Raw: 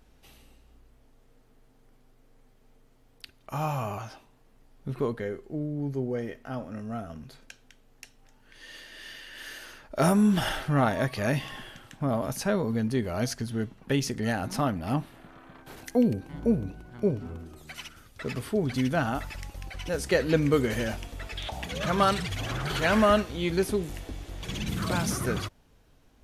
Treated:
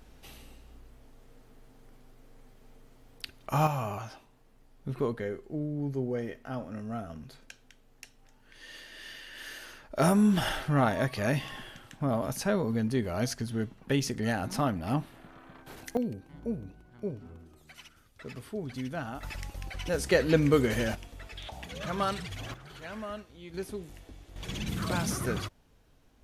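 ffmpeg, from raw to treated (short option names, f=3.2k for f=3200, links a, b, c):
-af "asetnsamples=n=441:p=0,asendcmd='3.67 volume volume -1.5dB;15.97 volume volume -9.5dB;19.23 volume volume 0dB;20.95 volume volume -7dB;22.54 volume volume -18dB;23.54 volume volume -11dB;24.36 volume volume -2.5dB',volume=5dB"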